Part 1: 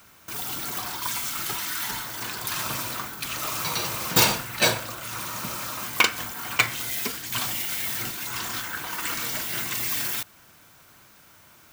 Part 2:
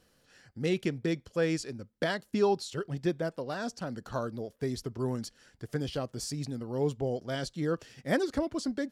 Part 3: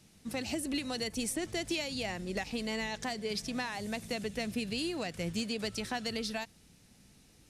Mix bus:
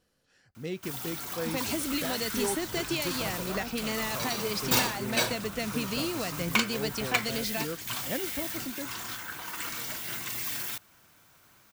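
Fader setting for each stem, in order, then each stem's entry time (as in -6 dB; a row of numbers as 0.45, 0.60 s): -6.5, -6.5, +2.5 dB; 0.55, 0.00, 1.20 s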